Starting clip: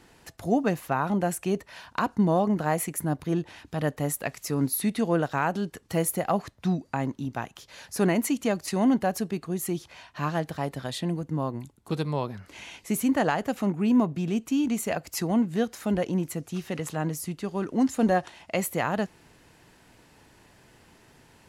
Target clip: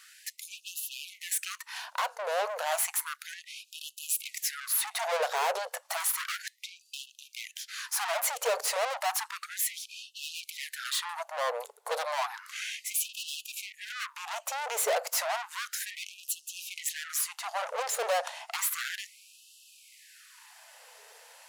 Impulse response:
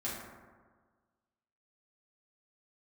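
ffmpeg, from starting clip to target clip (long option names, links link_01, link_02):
-filter_complex "[0:a]acrossover=split=320|1200[link_01][link_02][link_03];[link_02]dynaudnorm=framelen=410:gausssize=21:maxgain=12dB[link_04];[link_01][link_04][link_03]amix=inputs=3:normalize=0,highshelf=frequency=3800:gain=8,aeval=exprs='(tanh(39.8*val(0)+0.7)-tanh(0.7))/39.8':channel_layout=same,lowshelf=frequency=200:gain=11,afftfilt=real='re*gte(b*sr/1024,420*pow(2600/420,0.5+0.5*sin(2*PI*0.32*pts/sr)))':imag='im*gte(b*sr/1024,420*pow(2600/420,0.5+0.5*sin(2*PI*0.32*pts/sr)))':win_size=1024:overlap=0.75,volume=6.5dB"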